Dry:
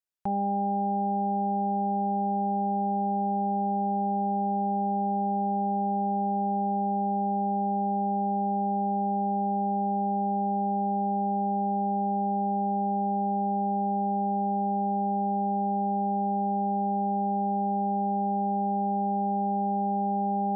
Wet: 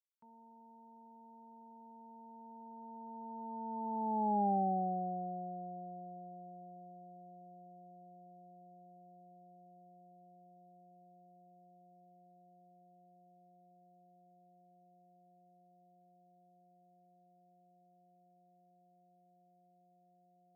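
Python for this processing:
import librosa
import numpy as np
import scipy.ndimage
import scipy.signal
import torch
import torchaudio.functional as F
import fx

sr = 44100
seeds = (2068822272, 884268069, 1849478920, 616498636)

y = fx.doppler_pass(x, sr, speed_mps=42, closest_m=17.0, pass_at_s=4.47)
y = scipy.signal.sosfilt(scipy.signal.butter(2, 160.0, 'highpass', fs=sr, output='sos'), y)
y = fx.upward_expand(y, sr, threshold_db=-43.0, expansion=1.5)
y = y * librosa.db_to_amplitude(-3.5)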